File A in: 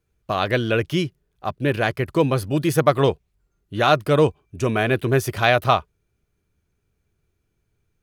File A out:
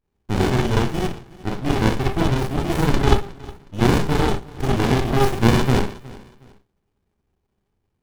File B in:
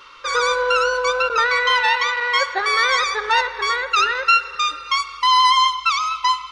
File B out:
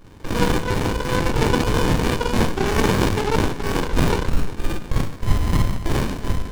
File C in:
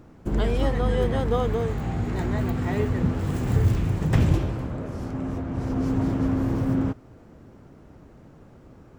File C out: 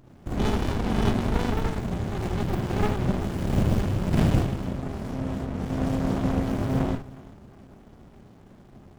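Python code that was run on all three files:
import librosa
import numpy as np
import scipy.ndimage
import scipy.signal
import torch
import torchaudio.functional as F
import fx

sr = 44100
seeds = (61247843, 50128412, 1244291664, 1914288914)

p1 = fx.high_shelf(x, sr, hz=2500.0, db=11.5)
p2 = 10.0 ** (-13.0 / 20.0) * np.tanh(p1 / 10.0 ** (-13.0 / 20.0))
p3 = p1 + (p2 * 10.0 ** (-6.5 / 20.0))
p4 = fx.cheby_harmonics(p3, sr, harmonics=(2, 3, 5, 6), levels_db=(-10, -20, -25, -14), full_scale_db=4.0)
p5 = fx.small_body(p4, sr, hz=(410.0, 3000.0), ring_ms=45, db=11)
p6 = p5 + fx.echo_feedback(p5, sr, ms=364, feedback_pct=30, wet_db=-20.5, dry=0)
p7 = fx.rev_schroeder(p6, sr, rt60_s=0.32, comb_ms=31, drr_db=-7.0)
p8 = fx.running_max(p7, sr, window=65)
y = p8 * 10.0 ** (-11.0 / 20.0)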